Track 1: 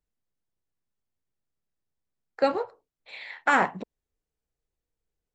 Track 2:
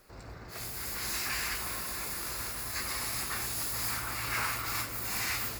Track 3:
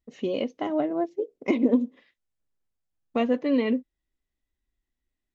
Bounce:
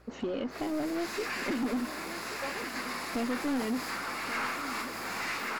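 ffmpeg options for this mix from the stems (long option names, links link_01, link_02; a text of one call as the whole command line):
ffmpeg -i stem1.wav -i stem2.wav -i stem3.wav -filter_complex "[0:a]alimiter=limit=-14.5dB:level=0:latency=1,aeval=exprs='val(0)+0.00501*(sin(2*PI*60*n/s)+sin(2*PI*2*60*n/s)/2+sin(2*PI*3*60*n/s)/3+sin(2*PI*4*60*n/s)/4+sin(2*PI*5*60*n/s)/5)':channel_layout=same,volume=-13dB[link_01];[1:a]highpass=frequency=190:width=0.5412,highpass=frequency=190:width=1.3066,aemphasis=mode=reproduction:type=75fm,volume=3dB,asplit=2[link_02][link_03];[link_03]volume=-3.5dB[link_04];[2:a]acompressor=threshold=-35dB:ratio=2.5,equalizer=frequency=270:width_type=o:width=0.77:gain=5,acontrast=39,volume=-4dB,asplit=2[link_05][link_06];[link_06]volume=-16dB[link_07];[link_04][link_07]amix=inputs=2:normalize=0,aecho=0:1:1132:1[link_08];[link_01][link_02][link_05][link_08]amix=inputs=4:normalize=0,aeval=exprs='1.06*(cos(1*acos(clip(val(0)/1.06,-1,1)))-cos(1*PI/2))+0.422*(cos(4*acos(clip(val(0)/1.06,-1,1)))-cos(4*PI/2))':channel_layout=same,asoftclip=type=tanh:threshold=-26dB" out.wav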